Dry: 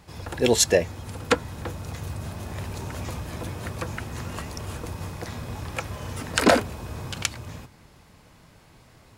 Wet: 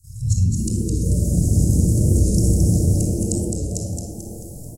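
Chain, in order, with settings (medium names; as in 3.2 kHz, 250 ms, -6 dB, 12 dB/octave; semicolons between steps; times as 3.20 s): low-pass that closes with the level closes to 1.9 kHz, closed at -20.5 dBFS; inverse Chebyshev band-stop 350–3500 Hz, stop band 50 dB; resonant high shelf 2.2 kHz +10.5 dB, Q 3; level rider gain up to 16 dB; granular stretch 0.52×, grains 51 ms; frequency-shifting echo 219 ms, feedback 49%, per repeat +120 Hz, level -4 dB; simulated room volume 3400 m³, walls furnished, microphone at 5.6 m; warped record 45 rpm, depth 100 cents; trim -5 dB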